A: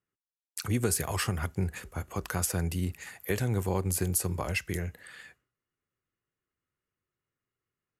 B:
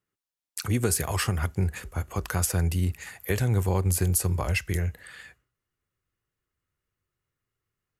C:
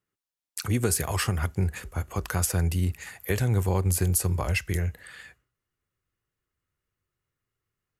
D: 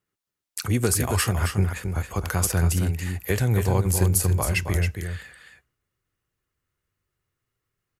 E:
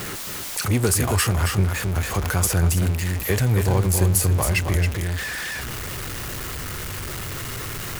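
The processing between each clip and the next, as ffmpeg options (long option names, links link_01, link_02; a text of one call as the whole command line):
ffmpeg -i in.wav -af "asubboost=boost=2.5:cutoff=120,volume=3dB" out.wav
ffmpeg -i in.wav -af anull out.wav
ffmpeg -i in.wav -af "aecho=1:1:272:0.473,volume=2.5dB" out.wav
ffmpeg -i in.wav -af "aeval=exprs='val(0)+0.5*0.0631*sgn(val(0))':channel_layout=same" out.wav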